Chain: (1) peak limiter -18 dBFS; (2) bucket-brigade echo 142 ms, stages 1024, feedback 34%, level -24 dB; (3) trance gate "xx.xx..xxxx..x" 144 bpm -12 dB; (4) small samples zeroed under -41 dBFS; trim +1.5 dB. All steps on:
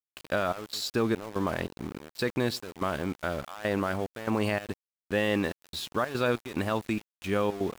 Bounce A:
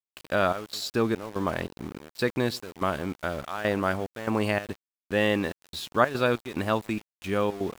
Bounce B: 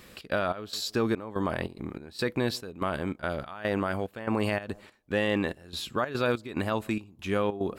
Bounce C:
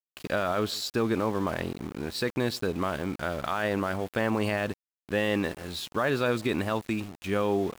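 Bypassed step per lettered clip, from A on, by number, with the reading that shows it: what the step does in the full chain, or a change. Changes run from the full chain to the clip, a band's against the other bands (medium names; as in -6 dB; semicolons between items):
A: 1, crest factor change +6.5 dB; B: 4, distortion -18 dB; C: 3, loudness change +1.5 LU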